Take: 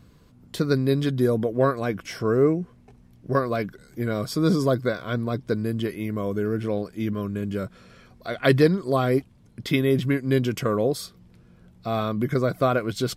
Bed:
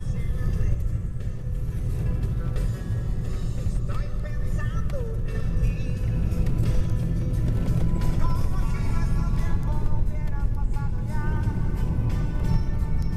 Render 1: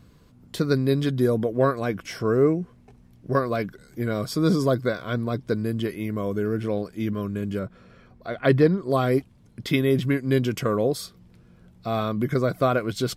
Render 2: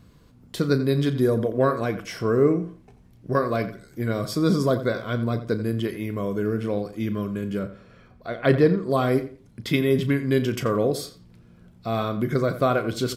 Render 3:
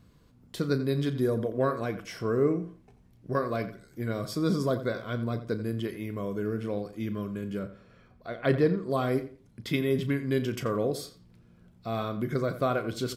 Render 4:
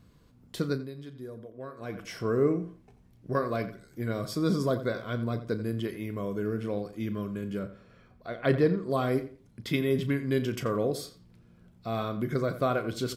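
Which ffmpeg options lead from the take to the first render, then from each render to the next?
-filter_complex "[0:a]asettb=1/sr,asplit=3[a][b][c];[a]atrim=end=7.594[d];[b]atrim=start=7.59:end=8.9,asetpts=PTS-STARTPTS,afade=t=in:d=0.004:c=qsin,afade=t=out:st=1.306:d=0.004:c=qsin,highshelf=f=3.1k:g=-12[e];[c]atrim=start=8.896[f];[d][e]acrossfade=d=0.004:c1=hsin:c2=qsin[g];[g][f]acrossfade=d=0.004:c1=qsin:c2=hsin"
-filter_complex "[0:a]asplit=2[a][b];[b]adelay=35,volume=-12.5dB[c];[a][c]amix=inputs=2:normalize=0,asplit=2[d][e];[e]adelay=86,lowpass=f=4.1k:p=1,volume=-12.5dB,asplit=2[f][g];[g]adelay=86,lowpass=f=4.1k:p=1,volume=0.26,asplit=2[h][i];[i]adelay=86,lowpass=f=4.1k:p=1,volume=0.26[j];[d][f][h][j]amix=inputs=4:normalize=0"
-af "volume=-6dB"
-filter_complex "[0:a]asplit=3[a][b][c];[a]atrim=end=0.91,asetpts=PTS-STARTPTS,afade=t=out:st=0.62:d=0.29:silence=0.177828[d];[b]atrim=start=0.91:end=1.76,asetpts=PTS-STARTPTS,volume=-15dB[e];[c]atrim=start=1.76,asetpts=PTS-STARTPTS,afade=t=in:d=0.29:silence=0.177828[f];[d][e][f]concat=n=3:v=0:a=1"

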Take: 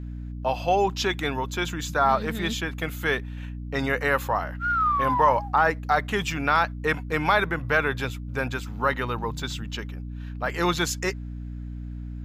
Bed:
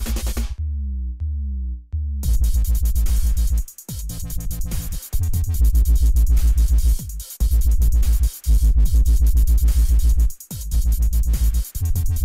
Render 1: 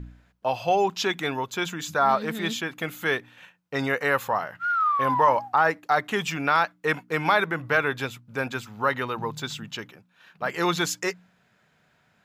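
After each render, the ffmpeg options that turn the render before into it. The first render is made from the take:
-af "bandreject=f=60:t=h:w=4,bandreject=f=120:t=h:w=4,bandreject=f=180:t=h:w=4,bandreject=f=240:t=h:w=4,bandreject=f=300:t=h:w=4"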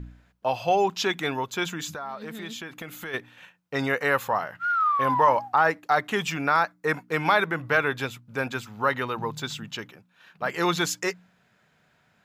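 -filter_complex "[0:a]asplit=3[a][b][c];[a]afade=t=out:st=1.92:d=0.02[d];[b]acompressor=threshold=-34dB:ratio=4:attack=3.2:release=140:knee=1:detection=peak,afade=t=in:st=1.92:d=0.02,afade=t=out:st=3.13:d=0.02[e];[c]afade=t=in:st=3.13:d=0.02[f];[d][e][f]amix=inputs=3:normalize=0,asettb=1/sr,asplit=3[g][h][i];[g]atrim=end=6.444[j];[h]atrim=start=6.44:end=7.04,asetpts=PTS-STARTPTS,afade=t=in:d=0.004:c=qsin,afade=t=out:st=0.596:d=0.004:c=qsin,equalizer=f=3k:t=o:w=0.47:g=-10.5[k];[i]atrim=start=7.036[l];[j][k]acrossfade=d=0.004:c1=hsin:c2=qsin[m];[m][l]acrossfade=d=0.004:c1=qsin:c2=hsin"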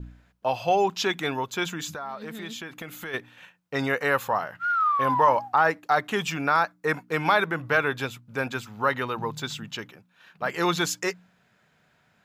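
-af "adynamicequalizer=threshold=0.00562:dfrequency=2000:dqfactor=6.5:tfrequency=2000:tqfactor=6.5:attack=5:release=100:ratio=0.375:range=2:mode=cutabove:tftype=bell"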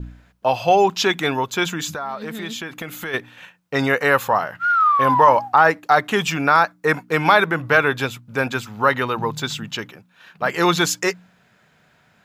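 -af "volume=7dB,alimiter=limit=-2dB:level=0:latency=1"

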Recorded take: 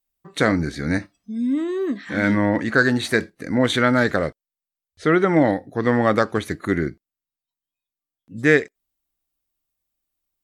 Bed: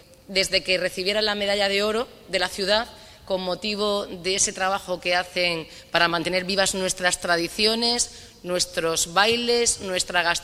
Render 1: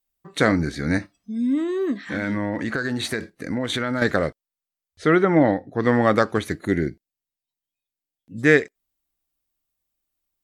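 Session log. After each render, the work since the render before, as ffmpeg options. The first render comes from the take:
-filter_complex "[0:a]asettb=1/sr,asplit=3[a][b][c];[a]atrim=end=1.984[d];[b]atrim=start=1.98:end=4.02,asetpts=PTS-STARTPTS,afade=t=in:d=0.004:c=qsin,afade=t=out:st=2.036:d=0.004:c=qsin,acompressor=threshold=-21dB:ratio=6:attack=3.2:release=140:knee=1:detection=peak[e];[c]atrim=start=4.016[f];[d][e]acrossfade=d=0.004:c1=hsin:c2=qsin[g];[g][f]acrossfade=d=0.004:c1=qsin:c2=hsin,asplit=3[h][i][j];[h]afade=t=out:st=5.21:d=0.02[k];[i]lowpass=f=2.6k:p=1,afade=t=in:st=5.21:d=0.02,afade=t=out:st=5.78:d=0.02[l];[j]afade=t=in:st=5.78:d=0.02[m];[k][l][m]amix=inputs=3:normalize=0,asettb=1/sr,asplit=3[n][o][p];[n]atrim=end=6.584[q];[o]atrim=start=6.58:end=8.38,asetpts=PTS-STARTPTS,afade=t=in:d=0.004:c=qsin,afade=t=out:st=1.796:d=0.004:c=qsin,equalizer=f=1.2k:t=o:w=0.48:g=-14[r];[p]atrim=start=8.376[s];[q][r]acrossfade=d=0.004:c1=hsin:c2=qsin[t];[t][s]acrossfade=d=0.004:c1=qsin:c2=hsin"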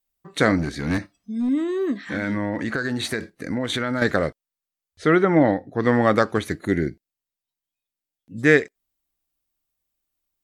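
-filter_complex "[0:a]asettb=1/sr,asplit=3[a][b][c];[a]atrim=end=0.584[d];[b]atrim=start=0.58:end=1.49,asetpts=PTS-STARTPTS,afade=t=in:d=0.004:c=qsin,afade=t=out:st=0.906:d=0.004:c=qsin,aeval=exprs='clip(val(0),-1,0.1)':c=same[e];[c]atrim=start=1.486[f];[d][e]acrossfade=d=0.004:c1=hsin:c2=qsin[g];[g][f]acrossfade=d=0.004:c1=qsin:c2=hsin"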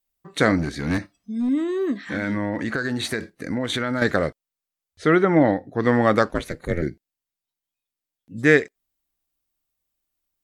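-filter_complex "[0:a]asplit=3[a][b][c];[a]afade=t=out:st=6.28:d=0.02[d];[b]aeval=exprs='val(0)*sin(2*PI*170*n/s)':c=same,afade=t=in:st=6.28:d=0.02,afade=t=out:st=6.81:d=0.02[e];[c]afade=t=in:st=6.81:d=0.02[f];[d][e][f]amix=inputs=3:normalize=0"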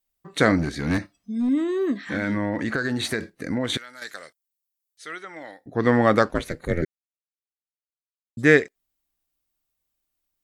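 -filter_complex "[0:a]asettb=1/sr,asplit=3[a][b][c];[a]atrim=end=3.774[d];[b]atrim=start=3.77:end=5.66,asetpts=PTS-STARTPTS,afade=t=in:d=0.004:c=qsin,afade=t=out:st=1.886:d=0.004:c=qsin,aderivative[e];[c]atrim=start=5.656[f];[d][e]acrossfade=d=0.004:c1=hsin:c2=qsin[g];[g][f]acrossfade=d=0.004:c1=qsin:c2=hsin,asplit=3[h][i][j];[h]atrim=end=6.85,asetpts=PTS-STARTPTS,afade=t=out:st=6.846:d=0.004:c=hsin[k];[i]atrim=start=6.85:end=8.37,asetpts=PTS-STARTPTS,volume=0[l];[j]atrim=start=8.37,asetpts=PTS-STARTPTS,afade=t=in:d=0.004:c=hsin[m];[k][l][m]concat=n=3:v=0:a=1"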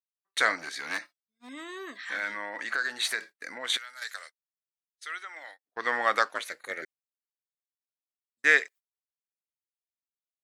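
-af "highpass=1.1k,agate=range=-34dB:threshold=-46dB:ratio=16:detection=peak"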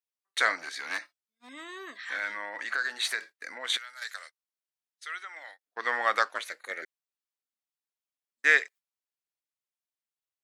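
-af "highpass=f=470:p=1,highshelf=f=8.3k:g=-4"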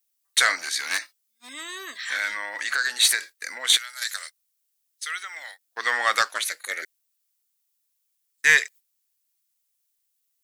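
-af "crystalizer=i=6.5:c=0,asoftclip=type=tanh:threshold=-6.5dB"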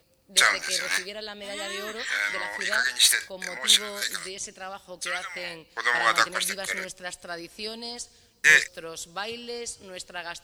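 -filter_complex "[1:a]volume=-14.5dB[a];[0:a][a]amix=inputs=2:normalize=0"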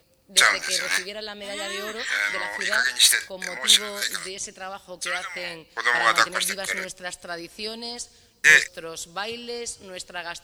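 -af "volume=2.5dB"

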